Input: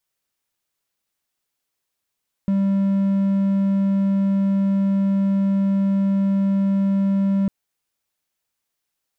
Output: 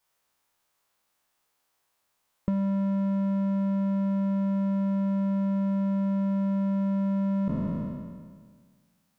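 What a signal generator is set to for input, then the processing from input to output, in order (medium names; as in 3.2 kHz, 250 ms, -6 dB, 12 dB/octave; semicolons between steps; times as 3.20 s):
tone triangle 196 Hz -14 dBFS 5.00 s
spectral sustain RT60 1.70 s; peaking EQ 930 Hz +8 dB 1.6 oct; compression 4:1, threshold -25 dBFS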